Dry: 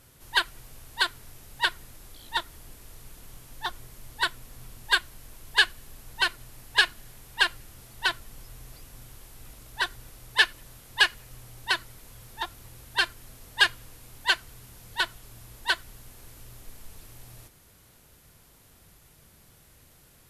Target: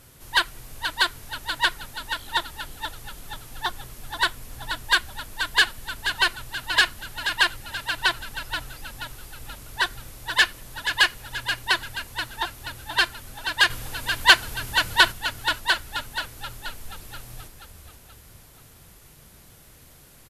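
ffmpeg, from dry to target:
ffmpeg -i in.wav -filter_complex "[0:a]asoftclip=type=tanh:threshold=-14.5dB,asettb=1/sr,asplit=3[link_01][link_02][link_03];[link_01]atrim=end=13.704[link_04];[link_02]atrim=start=13.7:end=15.12,asetpts=PTS-STARTPTS,afade=type=in:duration=0.004:curve=qsin,afade=type=out:start_time=1.416:duration=0.004:curve=qsin,acontrast=79[link_05];[link_03]atrim=start=15.116[link_06];[link_04][link_05]acrossfade=duration=0.004:curve1=hsin:curve2=qsin[link_07];[link_07][link_06]acrossfade=duration=0.004:curve1=qsin:curve2=hsin,asplit=7[link_08][link_09][link_10][link_11][link_12][link_13][link_14];[link_09]adelay=480,afreqshift=-39,volume=-8dB[link_15];[link_10]adelay=960,afreqshift=-78,volume=-14.4dB[link_16];[link_11]adelay=1440,afreqshift=-117,volume=-20.8dB[link_17];[link_12]adelay=1920,afreqshift=-156,volume=-27.1dB[link_18];[link_13]adelay=2400,afreqshift=-195,volume=-33.5dB[link_19];[link_14]adelay=2880,afreqshift=-234,volume=-39.9dB[link_20];[link_08][link_15][link_16][link_17][link_18][link_19][link_20]amix=inputs=7:normalize=0,volume=5dB" out.wav

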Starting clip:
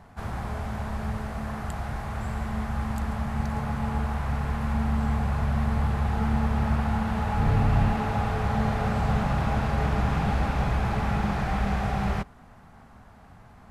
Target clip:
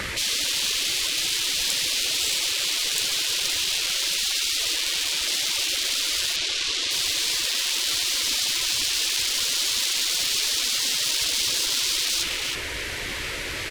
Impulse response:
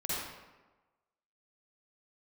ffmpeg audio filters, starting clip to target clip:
-filter_complex "[0:a]adynamicequalizer=threshold=0.00708:dfrequency=170:dqfactor=2.7:tfrequency=170:tqfactor=2.7:attack=5:release=100:ratio=0.375:range=3.5:mode=boostabove:tftype=bell,asplit=2[link_01][link_02];[link_02]highpass=frequency=720:poles=1,volume=38dB,asoftclip=type=tanh:threshold=-11dB[link_03];[link_01][link_03]amix=inputs=2:normalize=0,lowpass=frequency=3900:poles=1,volume=-6dB,aecho=1:1:321:0.398,asplit=2[link_04][link_05];[link_05]aeval=exprs='0.075*(abs(mod(val(0)/0.075+3,4)-2)-1)':channel_layout=same,volume=-8.5dB[link_06];[link_04][link_06]amix=inputs=2:normalize=0,asplit=3[link_07][link_08][link_09];[link_07]afade=type=out:start_time=4.16:duration=0.02[link_10];[link_08]equalizer=frequency=380:width_type=o:width=2.8:gain=7,afade=type=in:start_time=4.16:duration=0.02,afade=type=out:start_time=4.58:duration=0.02[link_11];[link_09]afade=type=in:start_time=4.58:duration=0.02[link_12];[link_10][link_11][link_12]amix=inputs=3:normalize=0,asettb=1/sr,asplit=3[link_13][link_14][link_15];[link_13]atrim=end=6.364[link_16];[link_14]atrim=start=6.36:end=6.91,asetpts=PTS-STARTPTS,afade=type=in:duration=0.004:curve=qsin,afade=type=out:start_time=0.546:duration=0.004:curve=qsin,lowpass=6300[link_17];[link_15]atrim=start=6.906[link_18];[link_16][link_17]acrossfade=duration=0.004:curve1=hsin:curve2=qsin[link_19];[link_19][link_18]acrossfade=duration=0.004:curve1=qsin:curve2=hsin,afftfilt=real='re*lt(hypot(re,im),0.1)':imag='im*lt(hypot(re,im),0.1)':win_size=1024:overlap=0.75,acrossover=split=150|3000[link_20][link_21][link_22];[link_21]acompressor=threshold=-40dB:ratio=6[link_23];[link_20][link_23][link_22]amix=inputs=3:normalize=0,volume=7.5dB"

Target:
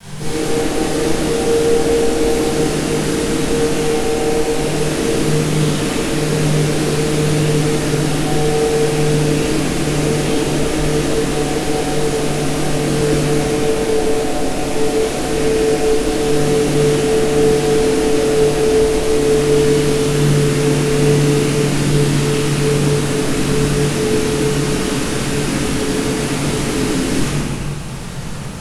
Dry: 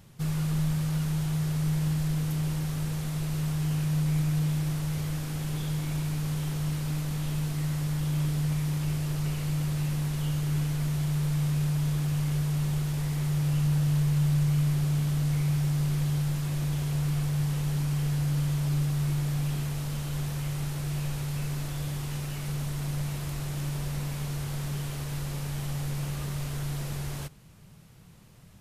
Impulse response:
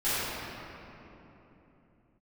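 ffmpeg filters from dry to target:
-filter_complex "[0:a]acrossover=split=240|1100[link_01][link_02][link_03];[link_02]acompressor=threshold=-55dB:ratio=6[link_04];[link_01][link_04][link_03]amix=inputs=3:normalize=0,alimiter=level_in=1.5dB:limit=-24dB:level=0:latency=1:release=23,volume=-1.5dB,aeval=exprs='0.0562*sin(PI/2*3.16*val(0)/0.0562)':channel_layout=same,flanger=delay=20:depth=3.3:speed=1.1,acrusher=bits=6:mix=0:aa=0.000001[link_05];[1:a]atrim=start_sample=2205,afade=type=out:start_time=0.33:duration=0.01,atrim=end_sample=14994,asetrate=23373,aresample=44100[link_06];[link_05][link_06]afir=irnorm=-1:irlink=0,volume=-1.5dB"

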